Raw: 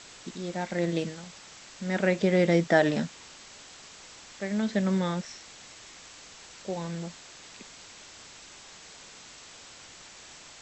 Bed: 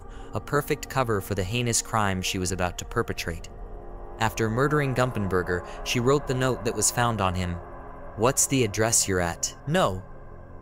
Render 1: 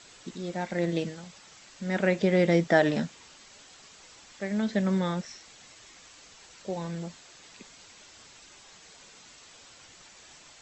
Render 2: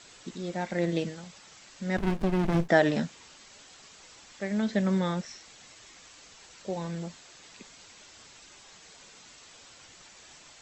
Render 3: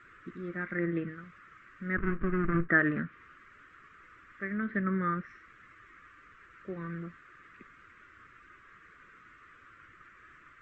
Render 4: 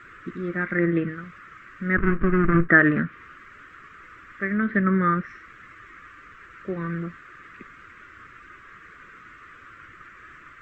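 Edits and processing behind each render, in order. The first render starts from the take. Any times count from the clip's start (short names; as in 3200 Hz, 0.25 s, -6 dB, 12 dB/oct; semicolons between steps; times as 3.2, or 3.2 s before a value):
denoiser 6 dB, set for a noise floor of -49 dBFS
1.97–2.69 running maximum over 65 samples
treble ducked by the level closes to 2700 Hz, closed at -24 dBFS; EQ curve 100 Hz 0 dB, 220 Hz -6 dB, 340 Hz -1 dB, 860 Hz -23 dB, 1200 Hz +8 dB, 1900 Hz +3 dB, 4300 Hz -29 dB
gain +9.5 dB; limiter -2 dBFS, peak gain reduction 1 dB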